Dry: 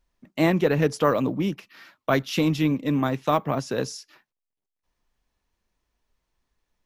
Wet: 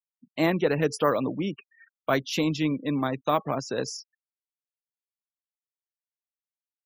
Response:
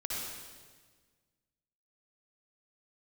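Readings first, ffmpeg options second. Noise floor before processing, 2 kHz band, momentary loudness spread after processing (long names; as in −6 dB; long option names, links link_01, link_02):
−85 dBFS, −2.0 dB, 11 LU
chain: -af "bass=frequency=250:gain=-4,treble=frequency=4000:gain=4,afftfilt=real='re*gte(hypot(re,im),0.0158)':imag='im*gte(hypot(re,im),0.0158)':win_size=1024:overlap=0.75,volume=-2dB"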